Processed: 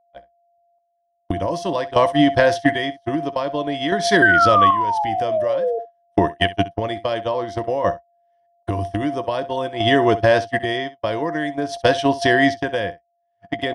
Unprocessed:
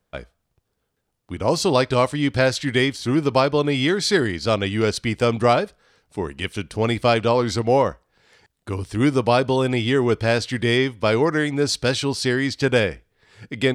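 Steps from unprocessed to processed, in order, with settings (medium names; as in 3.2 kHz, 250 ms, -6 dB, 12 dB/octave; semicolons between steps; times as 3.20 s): recorder AGC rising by 20 dB/s; painted sound fall, 4.22–5.79 s, 450–1600 Hz -12 dBFS; rippled EQ curve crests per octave 1.2, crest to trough 10 dB; whistle 690 Hz -20 dBFS; gate -17 dBFS, range -51 dB; tone controls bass -3 dB, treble -8 dB; in parallel at +1 dB: peak limiter -12.5 dBFS, peak gain reduction 13 dB; on the sum: compression 4:1, threshold -17 dBFS, peak gain reduction 12.5 dB; square tremolo 0.51 Hz, depth 60%, duty 40%; on a send: early reflections 14 ms -15 dB, 65 ms -18 dB; on the sum: trim +4.5 dB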